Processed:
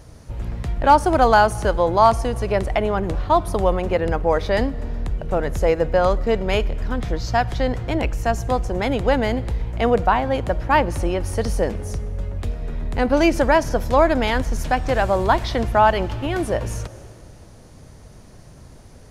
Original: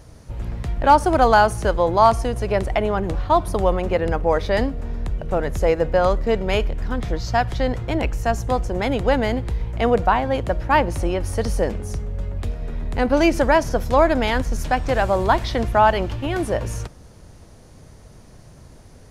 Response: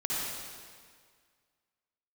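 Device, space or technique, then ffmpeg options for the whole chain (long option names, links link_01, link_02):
ducked reverb: -filter_complex "[0:a]asplit=3[link_01][link_02][link_03];[1:a]atrim=start_sample=2205[link_04];[link_02][link_04]afir=irnorm=-1:irlink=0[link_05];[link_03]apad=whole_len=842681[link_06];[link_05][link_06]sidechaincompress=threshold=-30dB:ratio=8:attack=16:release=234,volume=-18.5dB[link_07];[link_01][link_07]amix=inputs=2:normalize=0"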